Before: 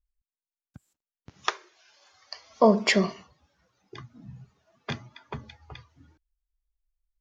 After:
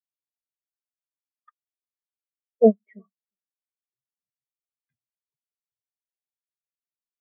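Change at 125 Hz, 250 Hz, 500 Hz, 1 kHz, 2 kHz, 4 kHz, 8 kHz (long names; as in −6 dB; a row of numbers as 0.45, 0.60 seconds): can't be measured, 0.0 dB, +3.0 dB, −8.5 dB, below −30 dB, below −40 dB, below −35 dB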